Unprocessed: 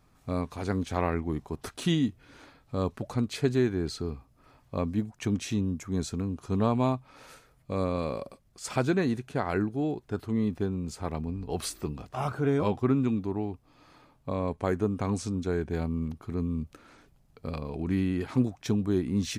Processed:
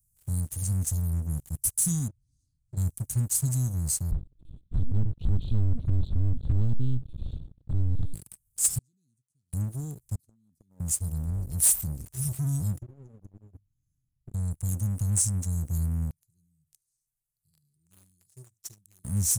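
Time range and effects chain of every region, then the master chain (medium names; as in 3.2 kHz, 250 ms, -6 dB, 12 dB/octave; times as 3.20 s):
2.08–2.77 s: low-pass 3.7 kHz + compression 2:1, threshold -44 dBFS
4.11–8.14 s: overdrive pedal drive 31 dB, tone 2 kHz, clips at -13 dBFS + LPC vocoder at 8 kHz pitch kept
8.78–9.53 s: waveshaping leveller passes 1 + vowel filter a
10.15–10.80 s: three-band isolator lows -23 dB, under 200 Hz, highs -16 dB, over 4.6 kHz + compression 10:1, threshold -36 dBFS + tape noise reduction on one side only decoder only
12.78–14.34 s: compression 12:1, threshold -37 dBFS + boxcar filter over 10 samples + hum notches 50/100/150/200/250/300/350/400 Hz
16.10–19.04 s: three-band isolator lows -18 dB, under 490 Hz, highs -13 dB, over 4.8 kHz + static phaser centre 360 Hz, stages 8 + delay 74 ms -14.5 dB
whole clip: inverse Chebyshev band-stop 570–2100 Hz, stop band 80 dB; tone controls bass -9 dB, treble +9 dB; waveshaping leveller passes 3; trim +5.5 dB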